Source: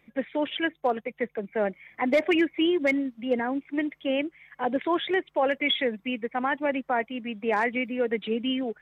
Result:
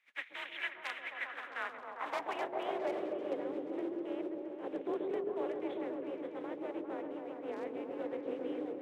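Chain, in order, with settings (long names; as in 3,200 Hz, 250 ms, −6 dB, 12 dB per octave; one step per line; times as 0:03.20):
compressing power law on the bin magnitudes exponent 0.39
echo whose low-pass opens from repeat to repeat 133 ms, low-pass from 400 Hz, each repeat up 1 octave, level 0 dB
band-pass filter sweep 2,000 Hz → 360 Hz, 0:01.05–0:03.53
frequency shifter +40 Hz
level −6.5 dB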